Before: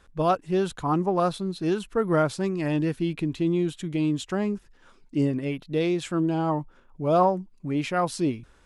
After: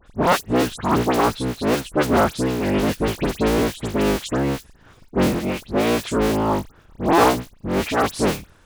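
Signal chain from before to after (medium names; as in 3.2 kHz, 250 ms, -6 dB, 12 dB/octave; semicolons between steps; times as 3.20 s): cycle switcher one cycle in 3, inverted; phase dispersion highs, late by 68 ms, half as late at 2.7 kHz; trim +5 dB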